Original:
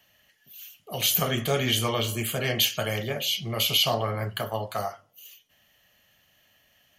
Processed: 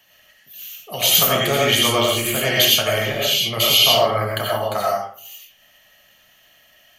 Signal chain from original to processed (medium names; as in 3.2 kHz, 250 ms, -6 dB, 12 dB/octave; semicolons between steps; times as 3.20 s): bass shelf 460 Hz -5.5 dB; hum notches 60/120 Hz; reverberation RT60 0.50 s, pre-delay 50 ms, DRR -2.5 dB; trim +6 dB